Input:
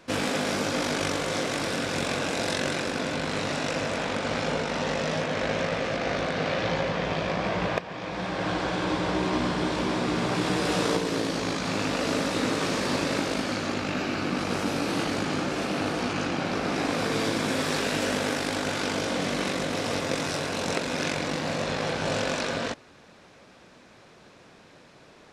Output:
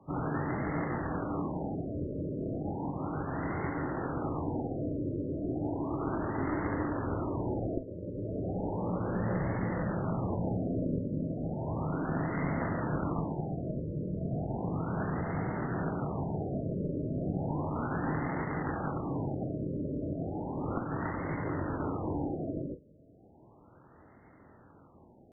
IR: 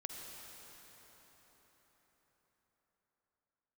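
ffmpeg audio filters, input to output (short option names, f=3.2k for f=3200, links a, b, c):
-filter_complex "[0:a]afreqshift=28,asetrate=23361,aresample=44100,atempo=1.88775,aeval=exprs='clip(val(0),-1,0.0501)':c=same[a];[1:a]atrim=start_sample=2205,afade=t=out:st=0.14:d=0.01,atrim=end_sample=6615,asetrate=88200,aresample=44100[b];[a][b]afir=irnorm=-1:irlink=0,afftfilt=real='re*lt(b*sr/1024,620*pow(2200/620,0.5+0.5*sin(2*PI*0.34*pts/sr)))':imag='im*lt(b*sr/1024,620*pow(2200/620,0.5+0.5*sin(2*PI*0.34*pts/sr)))':win_size=1024:overlap=0.75,volume=6.5dB"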